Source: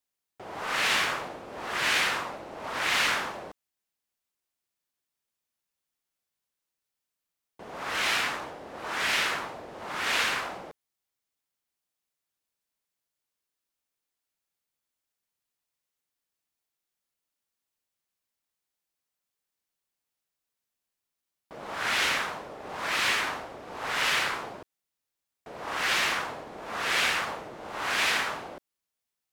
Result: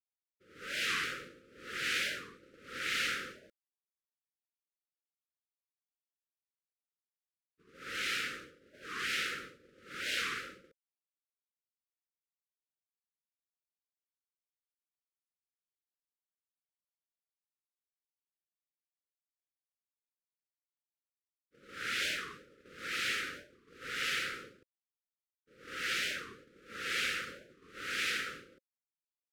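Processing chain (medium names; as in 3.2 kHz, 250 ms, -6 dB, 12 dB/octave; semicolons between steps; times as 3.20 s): Chebyshev band-stop 530–1300 Hz, order 4; expander -38 dBFS; warped record 45 rpm, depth 250 cents; trim -7.5 dB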